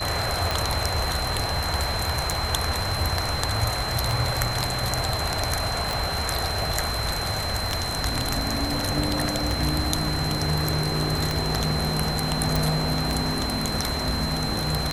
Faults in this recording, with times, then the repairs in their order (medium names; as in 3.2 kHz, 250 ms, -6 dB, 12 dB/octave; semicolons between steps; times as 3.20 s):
tick 33 1/3 rpm
whine 4.1 kHz -30 dBFS
5.93 s: pop
12.56 s: pop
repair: de-click; band-stop 4.1 kHz, Q 30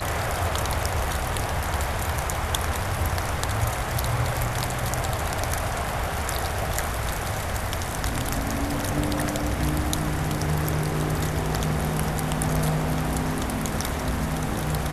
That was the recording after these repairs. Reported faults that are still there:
nothing left